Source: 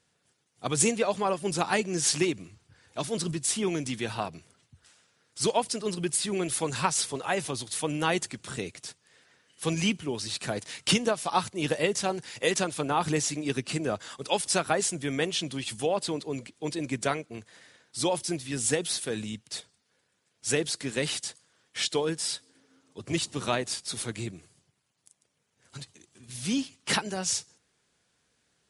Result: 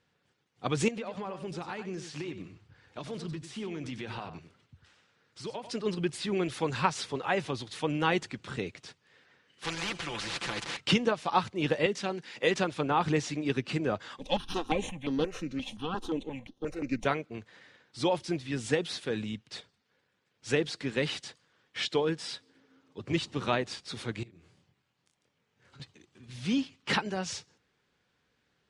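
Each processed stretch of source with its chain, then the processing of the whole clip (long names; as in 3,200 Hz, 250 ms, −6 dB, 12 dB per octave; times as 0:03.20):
0:00.88–0:05.71: downward compressor 10 to 1, threshold −33 dBFS + single-tap delay 95 ms −10 dB
0:09.64–0:10.77: comb filter 5.9 ms, depth 97% + gain into a clipping stage and back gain 14.5 dB + every bin compressed towards the loudest bin 4 to 1
0:11.86–0:12.43: high-pass filter 170 Hz 24 dB per octave + dynamic equaliser 750 Hz, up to −6 dB, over −40 dBFS, Q 0.74
0:14.19–0:17.05: lower of the sound and its delayed copy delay 0.31 ms + comb filter 3.8 ms, depth 36% + step-sequenced phaser 5.7 Hz 380–7,700 Hz
0:24.23–0:25.80: double-tracking delay 24 ms −3 dB + downward compressor 5 to 1, threshold −53 dBFS
whole clip: low-pass filter 3,600 Hz 12 dB per octave; notch filter 660 Hz, Q 13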